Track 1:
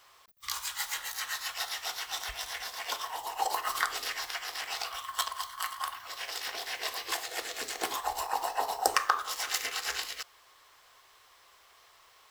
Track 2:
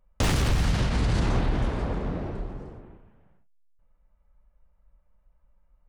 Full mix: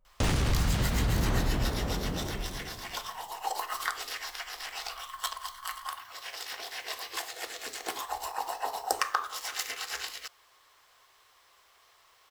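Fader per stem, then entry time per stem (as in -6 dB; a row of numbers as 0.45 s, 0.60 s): -2.5 dB, -3.5 dB; 0.05 s, 0.00 s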